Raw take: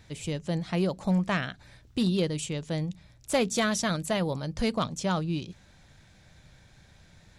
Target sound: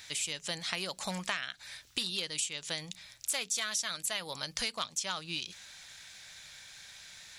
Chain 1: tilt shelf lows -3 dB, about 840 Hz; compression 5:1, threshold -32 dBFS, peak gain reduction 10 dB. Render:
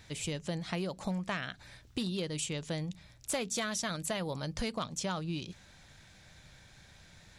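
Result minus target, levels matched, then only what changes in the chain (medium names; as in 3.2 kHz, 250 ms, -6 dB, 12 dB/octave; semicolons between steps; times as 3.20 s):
1 kHz band +2.5 dB
change: tilt shelf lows -15 dB, about 840 Hz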